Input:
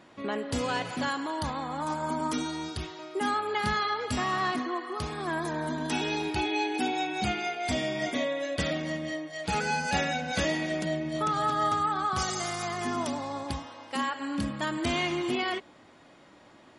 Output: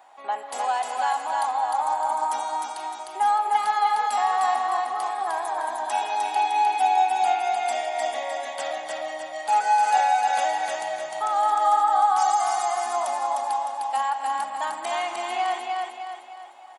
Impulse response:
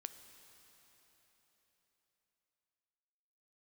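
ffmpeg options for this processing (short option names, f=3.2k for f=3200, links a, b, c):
-af "aexciter=amount=3.7:drive=2.4:freq=7.2k,highpass=f=790:t=q:w=9,aecho=1:1:305|610|915|1220|1525|1830:0.708|0.319|0.143|0.0645|0.029|0.0131,volume=-4dB"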